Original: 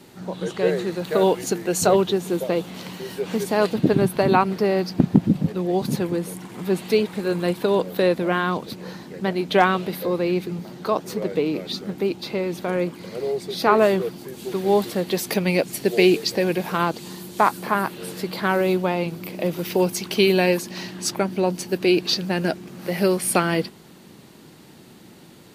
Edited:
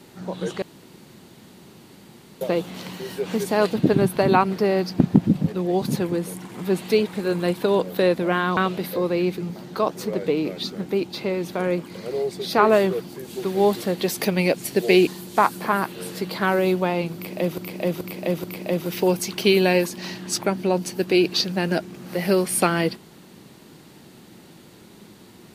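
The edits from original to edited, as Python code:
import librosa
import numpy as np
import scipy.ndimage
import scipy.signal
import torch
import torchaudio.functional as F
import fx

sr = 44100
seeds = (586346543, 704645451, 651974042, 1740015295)

y = fx.edit(x, sr, fx.room_tone_fill(start_s=0.62, length_s=1.79),
    fx.cut(start_s=8.57, length_s=1.09),
    fx.cut(start_s=16.16, length_s=0.93),
    fx.repeat(start_s=19.17, length_s=0.43, count=4), tone=tone)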